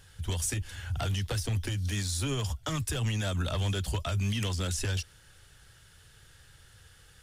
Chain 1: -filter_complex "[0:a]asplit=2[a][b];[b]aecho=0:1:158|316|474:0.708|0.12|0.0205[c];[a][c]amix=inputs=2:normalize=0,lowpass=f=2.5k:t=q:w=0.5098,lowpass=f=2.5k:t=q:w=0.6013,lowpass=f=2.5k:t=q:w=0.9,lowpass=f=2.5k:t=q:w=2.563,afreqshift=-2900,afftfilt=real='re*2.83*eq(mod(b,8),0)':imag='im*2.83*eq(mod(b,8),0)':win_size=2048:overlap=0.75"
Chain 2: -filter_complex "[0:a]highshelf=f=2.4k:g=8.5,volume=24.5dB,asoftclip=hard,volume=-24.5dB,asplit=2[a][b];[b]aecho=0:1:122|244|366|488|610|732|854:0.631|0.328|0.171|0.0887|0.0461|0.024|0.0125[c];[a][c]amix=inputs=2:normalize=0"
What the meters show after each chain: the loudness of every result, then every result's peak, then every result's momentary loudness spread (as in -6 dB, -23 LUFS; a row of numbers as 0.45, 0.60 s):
-33.5, -27.5 LUFS; -18.5, -17.5 dBFS; 14, 6 LU